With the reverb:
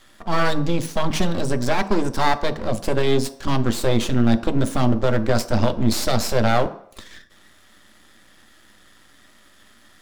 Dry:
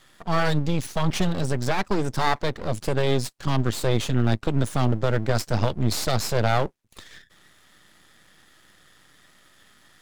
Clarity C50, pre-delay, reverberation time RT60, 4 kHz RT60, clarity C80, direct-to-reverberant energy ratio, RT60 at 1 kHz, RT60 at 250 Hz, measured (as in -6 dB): 16.0 dB, 3 ms, 0.65 s, 0.60 s, 18.0 dB, 8.5 dB, 0.65 s, 0.45 s